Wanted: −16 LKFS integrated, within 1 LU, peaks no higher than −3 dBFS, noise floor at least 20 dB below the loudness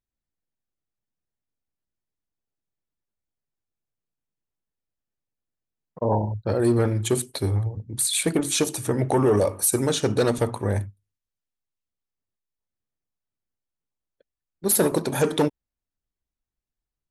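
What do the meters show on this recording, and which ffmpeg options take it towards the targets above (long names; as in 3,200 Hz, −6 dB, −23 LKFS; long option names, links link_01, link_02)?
integrated loudness −23.5 LKFS; sample peak −8.0 dBFS; target loudness −16.0 LKFS
→ -af "volume=7.5dB,alimiter=limit=-3dB:level=0:latency=1"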